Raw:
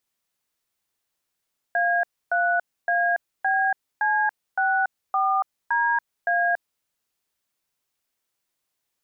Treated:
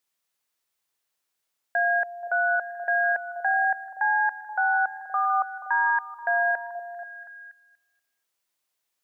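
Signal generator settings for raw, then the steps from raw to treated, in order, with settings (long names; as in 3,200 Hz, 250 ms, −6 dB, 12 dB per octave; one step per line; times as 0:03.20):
touch tones "A3ABC64DA", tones 283 ms, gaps 282 ms, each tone −21.5 dBFS
low-shelf EQ 350 Hz −8 dB
echo through a band-pass that steps 240 ms, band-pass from 490 Hz, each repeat 0.7 octaves, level −9 dB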